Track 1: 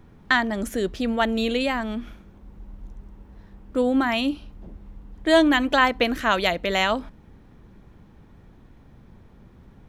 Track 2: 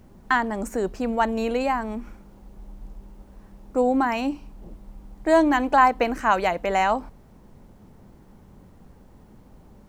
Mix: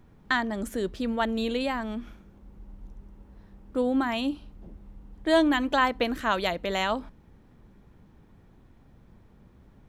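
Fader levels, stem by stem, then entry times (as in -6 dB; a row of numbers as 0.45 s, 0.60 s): -6.0 dB, -15.5 dB; 0.00 s, 0.00 s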